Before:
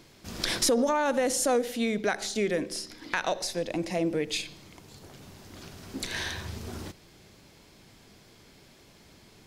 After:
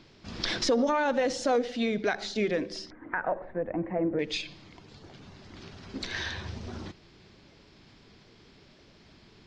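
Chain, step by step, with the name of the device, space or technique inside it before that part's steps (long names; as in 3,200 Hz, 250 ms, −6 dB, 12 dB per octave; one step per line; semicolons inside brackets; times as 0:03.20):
0:02.90–0:04.19: Butterworth low-pass 1,800 Hz 36 dB per octave
clip after many re-uploads (low-pass filter 5,400 Hz 24 dB per octave; spectral magnitudes quantised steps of 15 dB)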